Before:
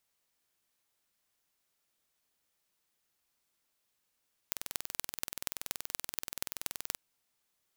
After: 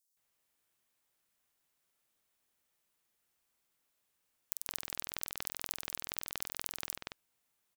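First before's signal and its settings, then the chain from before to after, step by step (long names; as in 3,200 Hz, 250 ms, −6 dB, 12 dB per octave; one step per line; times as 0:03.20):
impulse train 21 per second, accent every 5, −4.5 dBFS 2.47 s
multiband delay without the direct sound highs, lows 170 ms, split 4,800 Hz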